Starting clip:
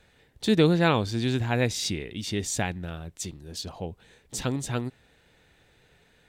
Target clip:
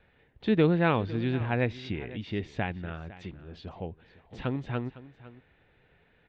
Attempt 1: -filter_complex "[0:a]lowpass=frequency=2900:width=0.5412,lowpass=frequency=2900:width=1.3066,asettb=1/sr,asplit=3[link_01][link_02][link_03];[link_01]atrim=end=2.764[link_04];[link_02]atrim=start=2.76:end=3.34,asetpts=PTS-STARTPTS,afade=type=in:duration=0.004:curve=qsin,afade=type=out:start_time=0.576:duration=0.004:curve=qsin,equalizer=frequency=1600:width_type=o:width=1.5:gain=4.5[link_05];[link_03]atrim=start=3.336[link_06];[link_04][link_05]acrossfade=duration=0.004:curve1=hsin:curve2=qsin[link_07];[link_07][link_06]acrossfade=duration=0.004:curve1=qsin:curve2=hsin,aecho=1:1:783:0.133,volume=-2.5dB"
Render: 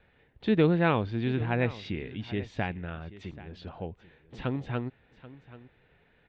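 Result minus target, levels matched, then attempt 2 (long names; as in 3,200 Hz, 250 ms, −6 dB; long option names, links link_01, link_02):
echo 277 ms late
-filter_complex "[0:a]lowpass=frequency=2900:width=0.5412,lowpass=frequency=2900:width=1.3066,asettb=1/sr,asplit=3[link_01][link_02][link_03];[link_01]atrim=end=2.764[link_04];[link_02]atrim=start=2.76:end=3.34,asetpts=PTS-STARTPTS,afade=type=in:duration=0.004:curve=qsin,afade=type=out:start_time=0.576:duration=0.004:curve=qsin,equalizer=frequency=1600:width_type=o:width=1.5:gain=4.5[link_05];[link_03]atrim=start=3.336[link_06];[link_04][link_05]acrossfade=duration=0.004:curve1=hsin:curve2=qsin[link_07];[link_07][link_06]acrossfade=duration=0.004:curve1=qsin:curve2=hsin,aecho=1:1:506:0.133,volume=-2.5dB"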